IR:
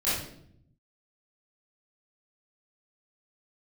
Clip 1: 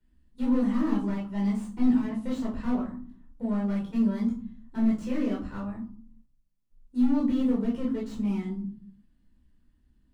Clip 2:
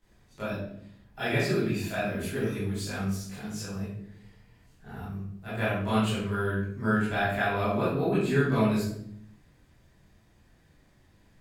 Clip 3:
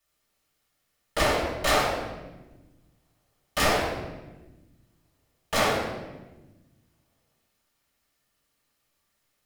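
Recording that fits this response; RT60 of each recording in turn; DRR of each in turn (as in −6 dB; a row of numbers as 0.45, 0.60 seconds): 2; 0.50, 0.70, 1.2 seconds; −5.0, −13.0, −5.5 decibels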